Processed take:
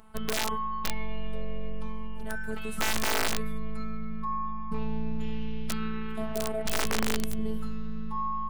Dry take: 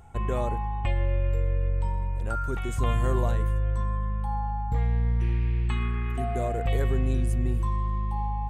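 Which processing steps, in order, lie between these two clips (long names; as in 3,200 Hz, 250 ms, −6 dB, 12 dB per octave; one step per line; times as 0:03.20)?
phases set to zero 218 Hz
formants moved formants +3 semitones
wrap-around overflow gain 17.5 dB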